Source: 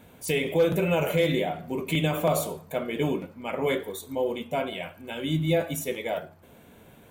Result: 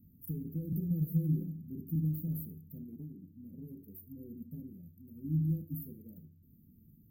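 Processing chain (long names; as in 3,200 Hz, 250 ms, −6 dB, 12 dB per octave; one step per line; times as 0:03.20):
inverse Chebyshev band-stop filter 730–6,200 Hz, stop band 60 dB
0:00.90–0:01.59: comb filter 6 ms, depth 65%
0:02.83–0:04.18: downward compressor 12 to 1, threshold −39 dBFS, peak gain reduction 12.5 dB
feedback delay network reverb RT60 0.61 s, low-frequency decay 1×, high-frequency decay 0.8×, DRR 14.5 dB
level −4.5 dB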